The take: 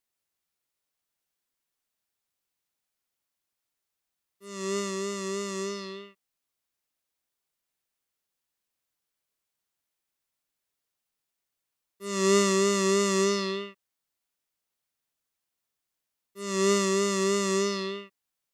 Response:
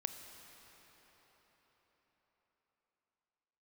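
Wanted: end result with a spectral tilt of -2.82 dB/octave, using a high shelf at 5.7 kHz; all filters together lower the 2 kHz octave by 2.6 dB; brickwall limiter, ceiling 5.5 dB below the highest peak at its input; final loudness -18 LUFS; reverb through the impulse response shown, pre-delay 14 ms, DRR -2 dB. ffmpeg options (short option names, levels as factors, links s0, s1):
-filter_complex "[0:a]equalizer=f=2000:t=o:g=-4,highshelf=f=5700:g=6.5,alimiter=limit=0.168:level=0:latency=1,asplit=2[s0][s1];[1:a]atrim=start_sample=2205,adelay=14[s2];[s1][s2]afir=irnorm=-1:irlink=0,volume=1.33[s3];[s0][s3]amix=inputs=2:normalize=0,volume=2.51"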